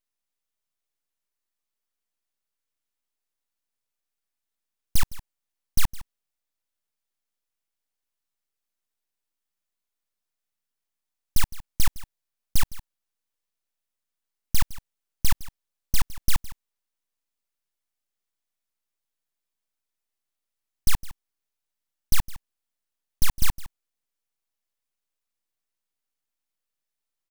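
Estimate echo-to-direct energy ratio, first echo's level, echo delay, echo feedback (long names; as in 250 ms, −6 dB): −17.5 dB, −17.5 dB, 161 ms, repeats not evenly spaced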